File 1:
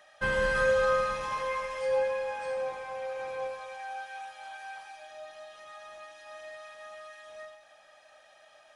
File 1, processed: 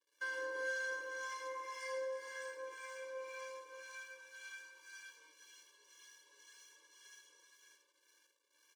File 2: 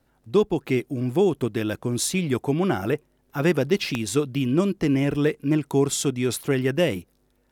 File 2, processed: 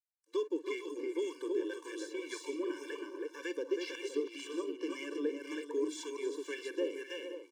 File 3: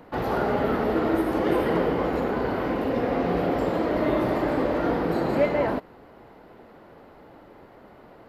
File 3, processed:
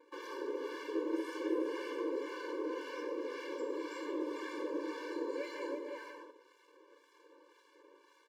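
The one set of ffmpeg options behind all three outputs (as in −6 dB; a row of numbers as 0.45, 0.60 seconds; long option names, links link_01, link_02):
-filter_complex "[0:a]tiltshelf=frequency=1100:gain=-4.5,acrossover=split=2800[link_01][link_02];[link_02]acompressor=threshold=-50dB:ratio=4:attack=1:release=60[link_03];[link_01][link_03]amix=inputs=2:normalize=0,asplit=2[link_04][link_05];[link_05]aecho=0:1:45|49|289|324|445|518:0.133|0.158|0.141|0.596|0.251|0.224[link_06];[link_04][link_06]amix=inputs=2:normalize=0,acrossover=split=970[link_07][link_08];[link_07]aeval=exprs='val(0)*(1-0.7/2+0.7/2*cos(2*PI*1.9*n/s))':channel_layout=same[link_09];[link_08]aeval=exprs='val(0)*(1-0.7/2-0.7/2*cos(2*PI*1.9*n/s))':channel_layout=same[link_10];[link_09][link_10]amix=inputs=2:normalize=0,aexciter=amount=1.4:drive=9.6:freq=5400,lowpass=frequency=7900:width=0.5412,lowpass=frequency=7900:width=1.3066,asubboost=boost=10.5:cutoff=56,acrossover=split=400|3000[link_11][link_12][link_13];[link_12]acompressor=threshold=-40dB:ratio=2.5[link_14];[link_11][link_14][link_13]amix=inputs=3:normalize=0,aeval=exprs='sgn(val(0))*max(abs(val(0))-0.00133,0)':channel_layout=same,afftfilt=real='re*eq(mod(floor(b*sr/1024/300),2),1)':imag='im*eq(mod(floor(b*sr/1024/300),2),1)':win_size=1024:overlap=0.75,volume=-3dB"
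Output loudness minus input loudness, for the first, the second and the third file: −13.5, −15.0, −15.0 LU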